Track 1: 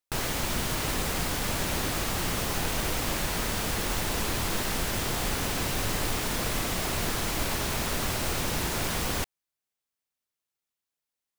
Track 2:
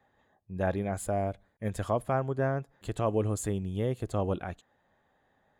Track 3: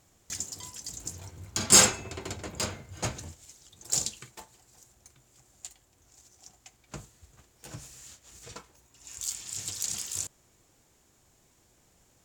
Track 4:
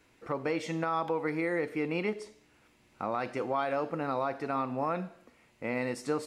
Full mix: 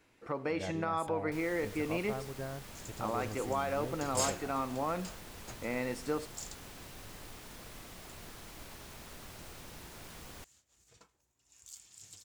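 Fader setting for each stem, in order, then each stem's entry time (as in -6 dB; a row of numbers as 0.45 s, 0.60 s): -20.0 dB, -12.5 dB, -17.0 dB, -3.0 dB; 1.20 s, 0.00 s, 2.45 s, 0.00 s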